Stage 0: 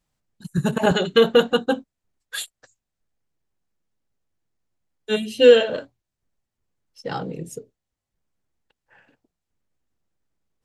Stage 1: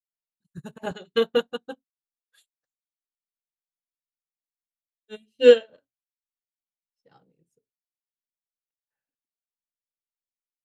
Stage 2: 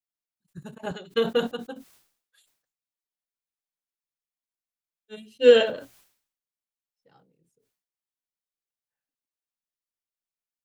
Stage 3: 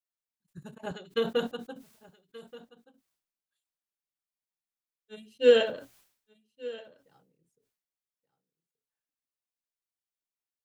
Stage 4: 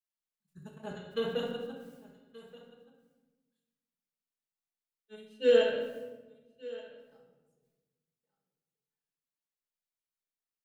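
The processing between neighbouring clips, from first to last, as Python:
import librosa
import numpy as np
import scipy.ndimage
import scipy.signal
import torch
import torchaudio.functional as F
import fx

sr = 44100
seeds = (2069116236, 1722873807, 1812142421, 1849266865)

y1 = fx.upward_expand(x, sr, threshold_db=-33.0, expansion=2.5)
y2 = fx.sustainer(y1, sr, db_per_s=100.0)
y2 = F.gain(torch.from_numpy(y2), -2.0).numpy()
y3 = y2 + 10.0 ** (-19.0 / 20.0) * np.pad(y2, (int(1178 * sr / 1000.0), 0))[:len(y2)]
y3 = F.gain(torch.from_numpy(y3), -4.5).numpy()
y4 = fx.room_shoebox(y3, sr, seeds[0], volume_m3=780.0, walls='mixed', distance_m=1.5)
y4 = F.gain(torch.from_numpy(y4), -7.0).numpy()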